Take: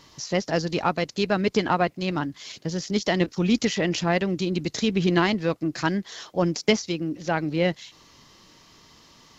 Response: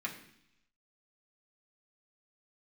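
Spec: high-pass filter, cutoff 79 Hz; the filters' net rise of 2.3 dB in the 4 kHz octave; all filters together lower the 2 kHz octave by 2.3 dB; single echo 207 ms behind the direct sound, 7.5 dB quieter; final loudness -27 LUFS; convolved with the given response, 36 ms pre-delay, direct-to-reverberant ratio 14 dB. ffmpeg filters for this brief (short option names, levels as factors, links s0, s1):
-filter_complex "[0:a]highpass=79,equalizer=f=2000:t=o:g=-4,equalizer=f=4000:t=o:g=4.5,aecho=1:1:207:0.422,asplit=2[s0][s1];[1:a]atrim=start_sample=2205,adelay=36[s2];[s1][s2]afir=irnorm=-1:irlink=0,volume=0.15[s3];[s0][s3]amix=inputs=2:normalize=0,volume=0.75"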